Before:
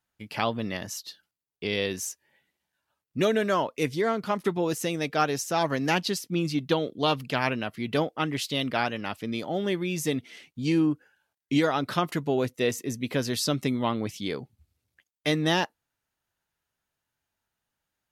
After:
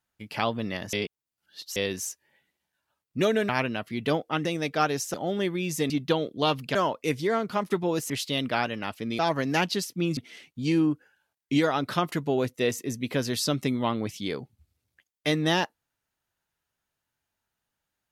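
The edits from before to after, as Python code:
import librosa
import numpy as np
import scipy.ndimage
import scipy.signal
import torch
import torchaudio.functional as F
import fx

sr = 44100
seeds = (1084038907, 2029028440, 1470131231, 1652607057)

y = fx.edit(x, sr, fx.reverse_span(start_s=0.93, length_s=0.83),
    fx.swap(start_s=3.49, length_s=1.35, other_s=7.36, other_length_s=0.96),
    fx.swap(start_s=5.53, length_s=0.98, other_s=9.41, other_length_s=0.76), tone=tone)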